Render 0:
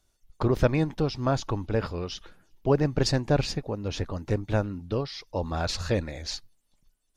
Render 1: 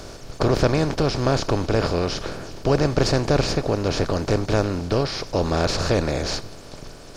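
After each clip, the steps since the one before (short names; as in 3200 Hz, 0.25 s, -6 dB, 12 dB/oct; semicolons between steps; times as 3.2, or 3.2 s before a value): per-bin compression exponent 0.4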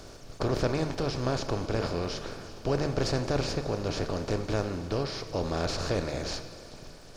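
de-hum 75.26 Hz, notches 36; crackle 72/s -42 dBFS; Schroeder reverb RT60 3.3 s, combs from 28 ms, DRR 11.5 dB; gain -8.5 dB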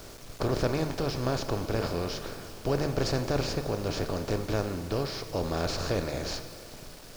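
requantised 8-bit, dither none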